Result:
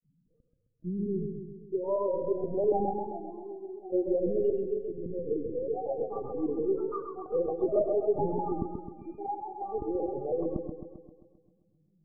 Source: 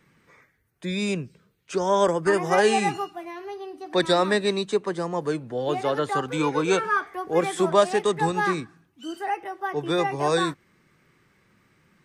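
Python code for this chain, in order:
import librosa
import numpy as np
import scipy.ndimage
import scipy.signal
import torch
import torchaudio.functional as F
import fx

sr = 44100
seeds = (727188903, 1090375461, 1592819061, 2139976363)

y = fx.freq_compress(x, sr, knee_hz=1500.0, ratio=1.5)
y = scipy.signal.sosfilt(scipy.signal.butter(4, 64.0, 'highpass', fs=sr, output='sos'), y)
y = fx.peak_eq(y, sr, hz=1700.0, db=-11.0, octaves=1.5)
y = fx.notch(y, sr, hz=1300.0, q=24.0)
y = fx.granulator(y, sr, seeds[0], grain_ms=100.0, per_s=20.0, spray_ms=36.0, spread_st=0)
y = fx.spec_topn(y, sr, count=4)
y = y + 10.0 ** (-15.0 / 20.0) * np.pad(y, (int(88 * sr / 1000.0), 0))[:len(y)]
y = fx.lpc_vocoder(y, sr, seeds[1], excitation='pitch_kept', order=10)
y = fx.echo_warbled(y, sr, ms=132, feedback_pct=57, rate_hz=2.8, cents=73, wet_db=-6.0)
y = F.gain(torch.from_numpy(y), -3.0).numpy()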